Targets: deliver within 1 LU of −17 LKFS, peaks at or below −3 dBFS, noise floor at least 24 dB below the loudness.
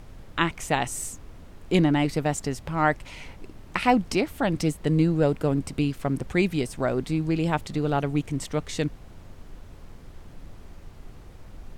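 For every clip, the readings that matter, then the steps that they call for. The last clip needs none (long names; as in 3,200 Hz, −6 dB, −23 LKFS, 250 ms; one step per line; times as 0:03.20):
background noise floor −46 dBFS; target noise floor −50 dBFS; integrated loudness −26.0 LKFS; sample peak −7.0 dBFS; target loudness −17.0 LKFS
→ noise reduction from a noise print 6 dB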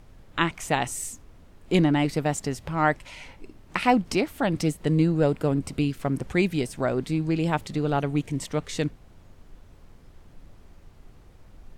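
background noise floor −52 dBFS; integrated loudness −26.0 LKFS; sample peak −7.0 dBFS; target loudness −17.0 LKFS
→ level +9 dB
brickwall limiter −3 dBFS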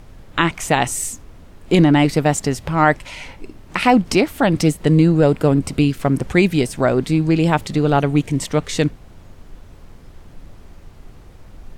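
integrated loudness −17.5 LKFS; sample peak −3.0 dBFS; background noise floor −43 dBFS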